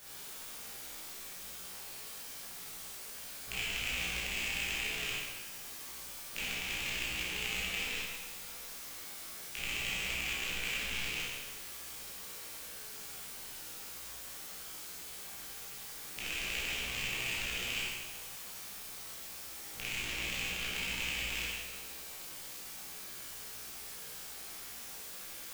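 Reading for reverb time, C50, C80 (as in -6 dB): 1.2 s, -3.0 dB, 0.5 dB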